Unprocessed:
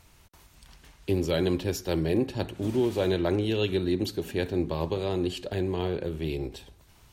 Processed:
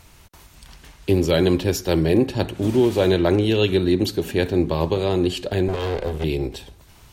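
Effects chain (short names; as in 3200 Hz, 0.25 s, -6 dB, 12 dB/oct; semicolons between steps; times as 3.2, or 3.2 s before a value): 5.68–6.24 minimum comb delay 1.9 ms; gain +8 dB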